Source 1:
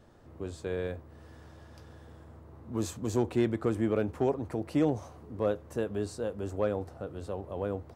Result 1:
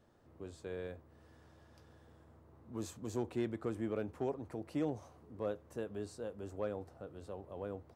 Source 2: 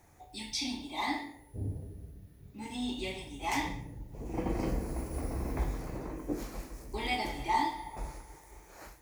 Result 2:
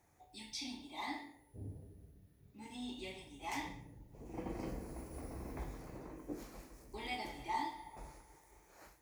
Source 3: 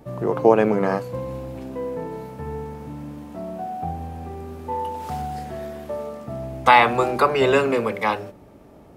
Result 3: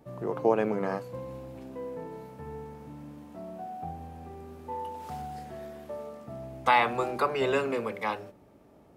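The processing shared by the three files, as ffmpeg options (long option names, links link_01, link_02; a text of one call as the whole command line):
ffmpeg -i in.wav -af "lowshelf=frequency=65:gain=-7,volume=-9dB" out.wav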